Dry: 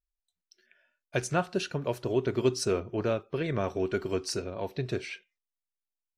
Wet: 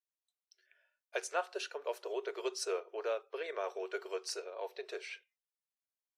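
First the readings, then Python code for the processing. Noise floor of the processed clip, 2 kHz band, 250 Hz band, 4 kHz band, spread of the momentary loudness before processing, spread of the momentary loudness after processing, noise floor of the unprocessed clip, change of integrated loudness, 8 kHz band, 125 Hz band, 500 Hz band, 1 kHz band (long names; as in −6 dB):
below −85 dBFS, −5.5 dB, −19.0 dB, −6.0 dB, 7 LU, 7 LU, below −85 dBFS, −8.5 dB, −6.0 dB, below −40 dB, −8.0 dB, −5.5 dB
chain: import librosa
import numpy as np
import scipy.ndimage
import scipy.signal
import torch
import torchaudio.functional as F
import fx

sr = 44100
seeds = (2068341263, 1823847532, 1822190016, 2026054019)

y = scipy.signal.sosfilt(scipy.signal.ellip(4, 1.0, 50, 430.0, 'highpass', fs=sr, output='sos'), x)
y = y * librosa.db_to_amplitude(-5.0)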